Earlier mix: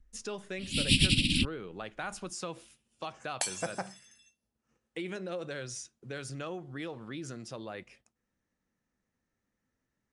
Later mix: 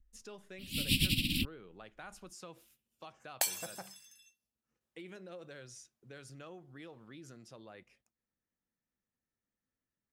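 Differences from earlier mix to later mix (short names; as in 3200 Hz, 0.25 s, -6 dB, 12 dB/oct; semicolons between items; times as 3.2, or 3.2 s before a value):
speech -11.0 dB; first sound -5.5 dB; master: remove brick-wall FIR low-pass 11000 Hz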